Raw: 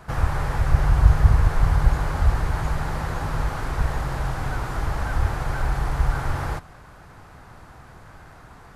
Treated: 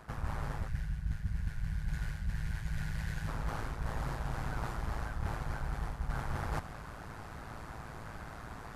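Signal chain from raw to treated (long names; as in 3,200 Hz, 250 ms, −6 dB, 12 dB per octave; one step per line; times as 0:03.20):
amplitude modulation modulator 110 Hz, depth 50%
gain on a spectral selection 0:00.68–0:03.28, 210–1,400 Hz −13 dB
reversed playback
downward compressor 8 to 1, threshold −35 dBFS, peak gain reduction 24.5 dB
reversed playback
level +3 dB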